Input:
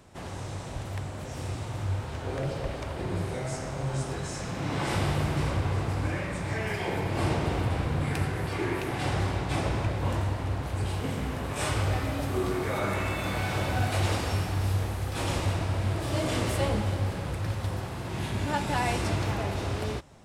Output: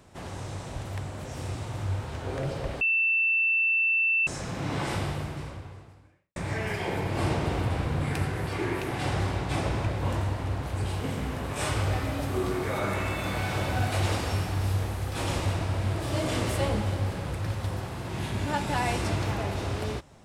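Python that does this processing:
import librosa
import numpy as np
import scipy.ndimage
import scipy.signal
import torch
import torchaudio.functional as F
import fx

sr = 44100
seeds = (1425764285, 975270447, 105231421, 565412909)

y = fx.edit(x, sr, fx.bleep(start_s=2.81, length_s=1.46, hz=2670.0, db=-21.0),
    fx.fade_out_span(start_s=4.77, length_s=1.59, curve='qua'), tone=tone)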